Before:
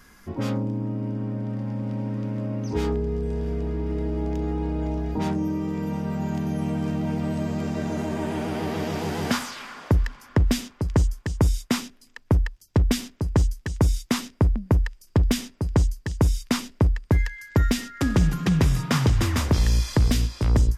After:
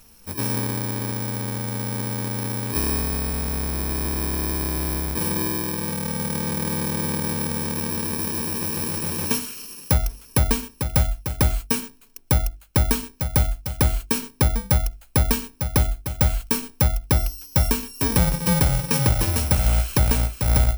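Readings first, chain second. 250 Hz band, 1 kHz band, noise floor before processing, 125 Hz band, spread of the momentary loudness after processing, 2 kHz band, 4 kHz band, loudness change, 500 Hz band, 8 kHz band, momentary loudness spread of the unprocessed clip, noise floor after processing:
-2.0 dB, +3.0 dB, -54 dBFS, 0.0 dB, 6 LU, +3.0 dB, +3.5 dB, +2.5 dB, -0.5 dB, +10.0 dB, 7 LU, -51 dBFS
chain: FFT order left unsorted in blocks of 64 samples; notches 50/100/150/200/250/300/350/400 Hz; gain +1.5 dB

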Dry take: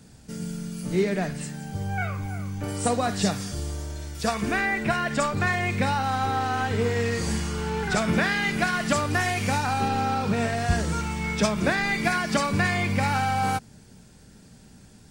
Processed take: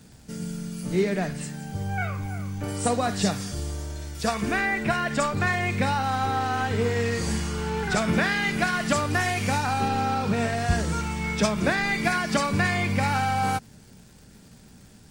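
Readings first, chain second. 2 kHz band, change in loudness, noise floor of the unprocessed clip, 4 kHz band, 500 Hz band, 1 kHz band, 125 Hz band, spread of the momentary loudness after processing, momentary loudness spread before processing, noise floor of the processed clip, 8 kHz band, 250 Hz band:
0.0 dB, 0.0 dB, -51 dBFS, 0.0 dB, 0.0 dB, 0.0 dB, 0.0 dB, 9 LU, 9 LU, -50 dBFS, 0.0 dB, 0.0 dB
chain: crackle 220/s -45 dBFS

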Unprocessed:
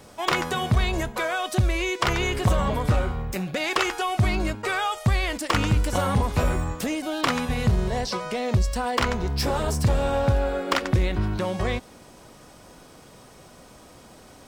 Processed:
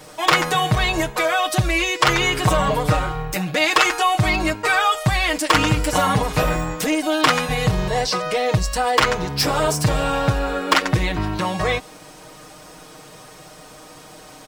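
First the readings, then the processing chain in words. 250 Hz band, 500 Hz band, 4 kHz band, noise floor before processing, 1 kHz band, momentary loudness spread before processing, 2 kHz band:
+4.0 dB, +5.0 dB, +8.5 dB, -49 dBFS, +8.0 dB, 5 LU, +8.0 dB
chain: low shelf 390 Hz -6.5 dB; comb 6.5 ms, depth 89%; gain +6 dB

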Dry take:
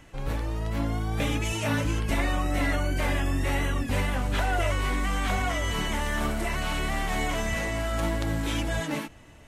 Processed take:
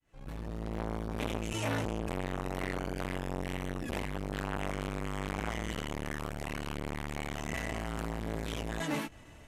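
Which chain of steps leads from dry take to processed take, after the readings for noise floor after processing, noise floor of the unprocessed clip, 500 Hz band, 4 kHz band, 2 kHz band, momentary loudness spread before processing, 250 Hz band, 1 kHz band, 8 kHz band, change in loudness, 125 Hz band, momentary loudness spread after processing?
-52 dBFS, -49 dBFS, -6.0 dB, -10.0 dB, -10.0 dB, 3 LU, -6.5 dB, -8.5 dB, -9.5 dB, -9.0 dB, -9.0 dB, 4 LU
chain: opening faded in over 0.70 s; core saturation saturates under 1000 Hz; gain -1.5 dB

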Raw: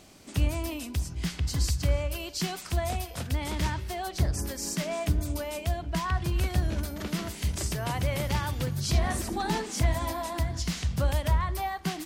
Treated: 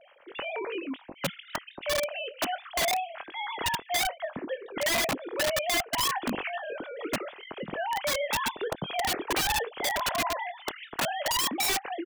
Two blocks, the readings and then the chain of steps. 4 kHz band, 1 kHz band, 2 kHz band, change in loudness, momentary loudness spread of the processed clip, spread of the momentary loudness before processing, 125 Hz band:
+6.0 dB, +3.5 dB, +6.5 dB, +0.5 dB, 11 LU, 6 LU, -18.5 dB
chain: sine-wave speech; doubler 23 ms -13 dB; wrapped overs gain 22 dB

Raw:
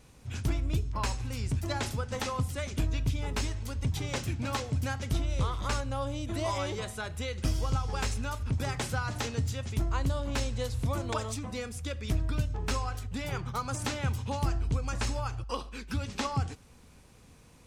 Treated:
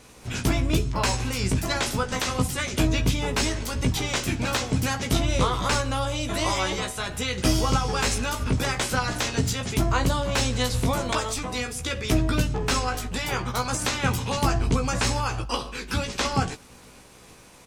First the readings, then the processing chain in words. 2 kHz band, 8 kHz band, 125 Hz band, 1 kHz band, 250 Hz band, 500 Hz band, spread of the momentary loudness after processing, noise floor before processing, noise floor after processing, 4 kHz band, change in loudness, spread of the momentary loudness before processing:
+10.5 dB, +11.5 dB, +4.5 dB, +8.5 dB, +9.5 dB, +8.0 dB, 5 LU, -56 dBFS, -49 dBFS, +11.5 dB, +7.5 dB, 5 LU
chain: spectral limiter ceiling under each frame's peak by 13 dB; doubler 16 ms -5 dB; gain +5.5 dB

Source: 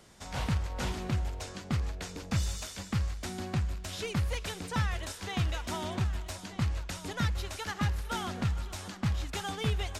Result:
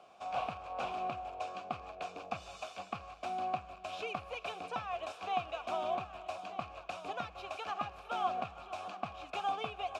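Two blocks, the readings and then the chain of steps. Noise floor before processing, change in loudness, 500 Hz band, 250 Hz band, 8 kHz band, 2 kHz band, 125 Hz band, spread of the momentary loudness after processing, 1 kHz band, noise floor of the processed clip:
-46 dBFS, -5.5 dB, +0.5 dB, -14.0 dB, -17.5 dB, -5.5 dB, -23.0 dB, 8 LU, +4.5 dB, -55 dBFS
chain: compressor, threshold -30 dBFS, peak gain reduction 6 dB; vowel filter a; gain +12 dB

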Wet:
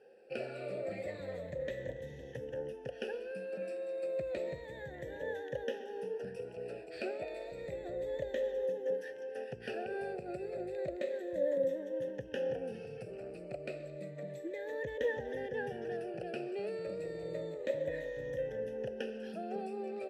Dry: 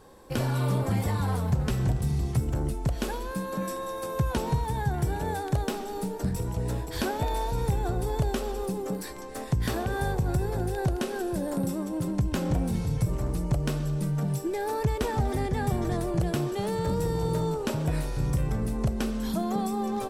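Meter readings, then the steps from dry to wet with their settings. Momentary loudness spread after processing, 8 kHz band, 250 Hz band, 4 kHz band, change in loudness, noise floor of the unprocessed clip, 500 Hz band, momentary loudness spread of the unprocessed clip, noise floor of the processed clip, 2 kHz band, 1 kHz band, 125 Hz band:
9 LU, under -20 dB, -16.0 dB, -13.5 dB, -10.5 dB, -35 dBFS, -3.5 dB, 5 LU, -48 dBFS, -6.5 dB, -16.5 dB, -24.5 dB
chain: moving spectral ripple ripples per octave 1.1, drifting -0.31 Hz, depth 13 dB; vowel filter e; gain +2.5 dB

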